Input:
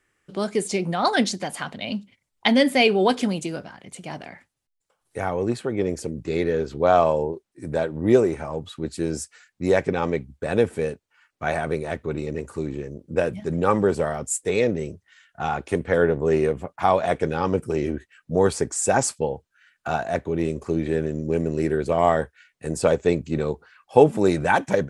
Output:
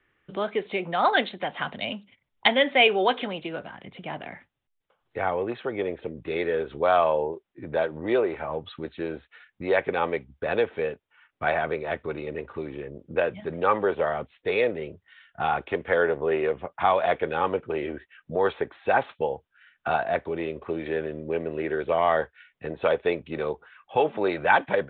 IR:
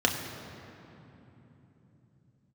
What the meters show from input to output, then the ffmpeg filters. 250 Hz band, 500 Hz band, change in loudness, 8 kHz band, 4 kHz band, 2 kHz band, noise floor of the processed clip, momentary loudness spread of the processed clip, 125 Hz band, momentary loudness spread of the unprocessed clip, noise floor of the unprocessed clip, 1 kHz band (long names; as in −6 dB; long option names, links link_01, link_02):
−9.0 dB, −3.5 dB, −3.0 dB, below −40 dB, 0.0 dB, +1.5 dB, −77 dBFS, 14 LU, −11.5 dB, 14 LU, −78 dBFS, −0.5 dB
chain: -filter_complex "[0:a]acrossover=split=430|1000[link_01][link_02][link_03];[link_01]acompressor=threshold=-41dB:ratio=4[link_04];[link_02]alimiter=limit=-18dB:level=0:latency=1:release=24[link_05];[link_04][link_05][link_03]amix=inputs=3:normalize=0,aresample=8000,aresample=44100,volume=1.5dB"